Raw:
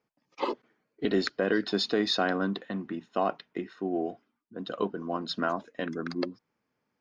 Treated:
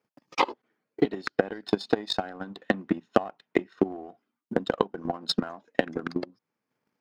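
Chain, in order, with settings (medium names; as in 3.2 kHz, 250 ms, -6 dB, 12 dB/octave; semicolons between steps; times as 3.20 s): partial rectifier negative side -3 dB; dynamic bell 800 Hz, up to +6 dB, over -48 dBFS, Q 3.2; compression 16:1, threshold -37 dBFS, peak gain reduction 17 dB; transient shaper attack +10 dB, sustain -10 dB; high-pass 110 Hz 12 dB/octave; transient shaper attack +12 dB, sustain +8 dB; trim -1 dB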